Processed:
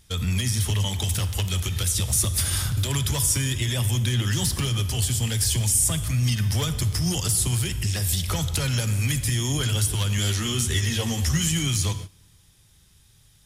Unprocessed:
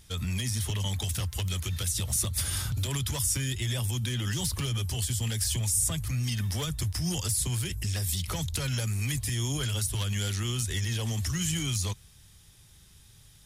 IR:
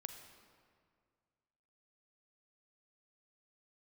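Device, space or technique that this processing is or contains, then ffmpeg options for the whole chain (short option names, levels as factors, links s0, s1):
keyed gated reverb: -filter_complex "[0:a]asplit=3[s0][s1][s2];[1:a]atrim=start_sample=2205[s3];[s1][s3]afir=irnorm=-1:irlink=0[s4];[s2]apad=whole_len=593557[s5];[s4][s5]sidechaingate=range=0.112:threshold=0.00562:ratio=16:detection=peak,volume=2.82[s6];[s0][s6]amix=inputs=2:normalize=0,asettb=1/sr,asplit=3[s7][s8][s9];[s7]atrim=end=10.174[s10];[s8]atrim=start=10.17:end=11.48,asetpts=PTS-STARTPTS,afade=t=in:d=0.004:c=qsin,afade=t=out:st=1.306:d=0.004:c=qsin,asplit=2[s11][s12];[s12]adelay=13,volume=0.631[s13];[s11][s13]amix=inputs=2:normalize=0,atrim=end_sample=57771[s14];[s9]atrim=start=11.476[s15];[s10][s14]acrossfade=d=0.004:c1=hsin:c2=qsin[s16];[s16][s15]acrossfade=d=0.004:c1=qsin:c2=hsin,volume=0.708"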